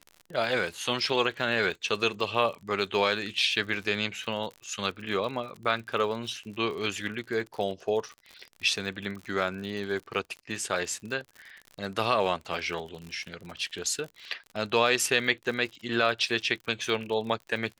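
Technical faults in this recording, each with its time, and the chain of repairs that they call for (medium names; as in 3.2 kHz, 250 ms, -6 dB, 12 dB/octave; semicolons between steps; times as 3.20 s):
crackle 59 per s -36 dBFS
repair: de-click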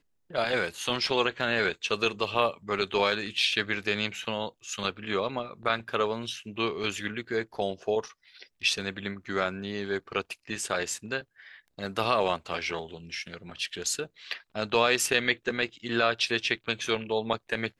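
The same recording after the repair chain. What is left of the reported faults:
nothing left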